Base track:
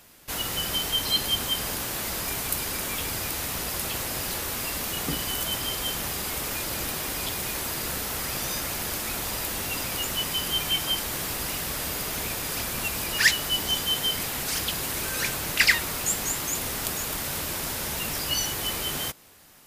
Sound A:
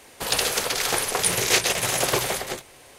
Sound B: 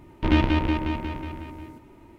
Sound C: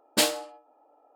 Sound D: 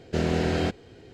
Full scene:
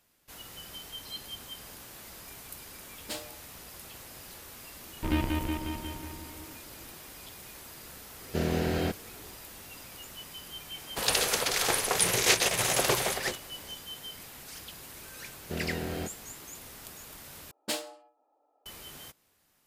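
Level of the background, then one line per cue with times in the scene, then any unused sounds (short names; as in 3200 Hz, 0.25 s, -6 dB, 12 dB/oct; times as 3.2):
base track -16.5 dB
2.92 add C -16 dB
4.8 add B -8.5 dB
8.21 add D -4 dB + bit-crush 11-bit
10.76 add A -3.5 dB
15.37 add D -10 dB
17.51 replace with C -10.5 dB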